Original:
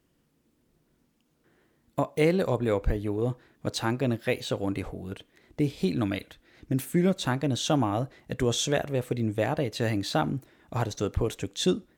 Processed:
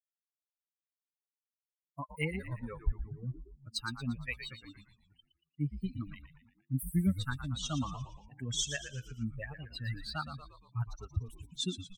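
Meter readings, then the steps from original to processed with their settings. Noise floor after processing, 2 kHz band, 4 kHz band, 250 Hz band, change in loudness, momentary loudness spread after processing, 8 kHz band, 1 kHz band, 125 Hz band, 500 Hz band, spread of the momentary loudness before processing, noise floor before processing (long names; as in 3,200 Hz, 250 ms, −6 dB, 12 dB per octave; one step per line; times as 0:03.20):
below −85 dBFS, −6.5 dB, −6.0 dB, −10.5 dB, −9.5 dB, 12 LU, −5.5 dB, −13.0 dB, −7.0 dB, −21.0 dB, 10 LU, −70 dBFS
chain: spectral dynamics exaggerated over time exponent 3
flat-topped bell 520 Hz −14.5 dB
echo with shifted repeats 116 ms, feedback 50%, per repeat −87 Hz, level −10 dB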